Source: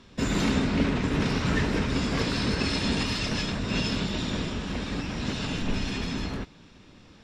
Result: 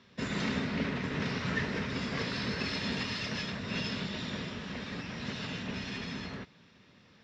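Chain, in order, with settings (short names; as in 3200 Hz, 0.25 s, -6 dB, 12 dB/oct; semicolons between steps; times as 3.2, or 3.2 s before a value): speaker cabinet 110–6100 Hz, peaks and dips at 310 Hz -8 dB, 800 Hz -3 dB, 1900 Hz +5 dB; gain -6 dB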